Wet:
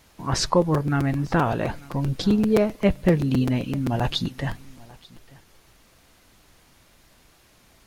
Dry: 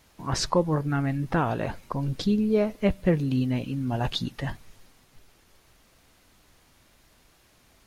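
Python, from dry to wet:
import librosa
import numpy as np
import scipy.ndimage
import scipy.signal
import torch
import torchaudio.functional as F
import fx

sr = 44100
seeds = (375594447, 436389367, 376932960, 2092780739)

y = x + 10.0 ** (-23.5 / 20.0) * np.pad(x, (int(889 * sr / 1000.0), 0))[:len(x)]
y = fx.buffer_crackle(y, sr, first_s=0.61, period_s=0.13, block=256, kind='repeat')
y = y * librosa.db_to_amplitude(3.5)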